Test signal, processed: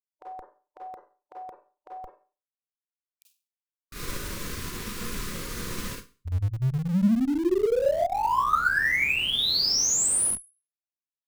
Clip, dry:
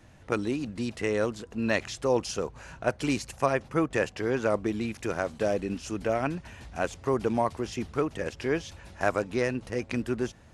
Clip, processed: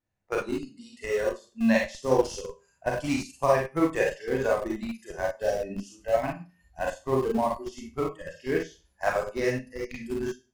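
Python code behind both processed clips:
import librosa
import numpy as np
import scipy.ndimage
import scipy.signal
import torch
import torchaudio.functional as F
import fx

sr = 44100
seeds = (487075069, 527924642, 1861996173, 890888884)

p1 = fx.hum_notches(x, sr, base_hz=60, count=4)
p2 = fx.noise_reduce_blind(p1, sr, reduce_db=20)
p3 = fx.peak_eq(p2, sr, hz=3000.0, db=-2.5, octaves=0.41)
p4 = fx.rev_schroeder(p3, sr, rt60_s=0.36, comb_ms=31, drr_db=-2.0)
p5 = fx.vibrato(p4, sr, rate_hz=0.53, depth_cents=7.0)
p6 = fx.schmitt(p5, sr, flips_db=-23.5)
p7 = p5 + (p6 * librosa.db_to_amplitude(-10.0))
y = fx.upward_expand(p7, sr, threshold_db=-40.0, expansion=1.5)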